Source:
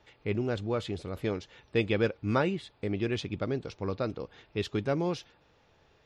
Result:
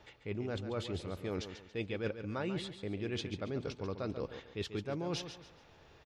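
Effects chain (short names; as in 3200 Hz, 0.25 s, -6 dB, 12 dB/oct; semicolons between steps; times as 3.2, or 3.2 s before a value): reverse; compressor 6:1, threshold -39 dBFS, peak gain reduction 16.5 dB; reverse; feedback echo 0.14 s, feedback 33%, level -10 dB; gain +3.5 dB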